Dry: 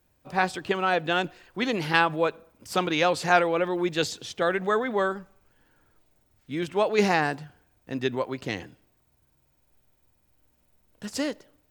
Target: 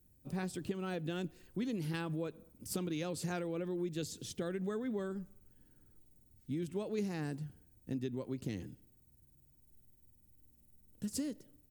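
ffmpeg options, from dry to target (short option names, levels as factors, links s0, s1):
-af "firequalizer=gain_entry='entry(220,0);entry(730,-19);entry(9500,0)':delay=0.05:min_phase=1,acompressor=threshold=0.0141:ratio=5,volume=1.26"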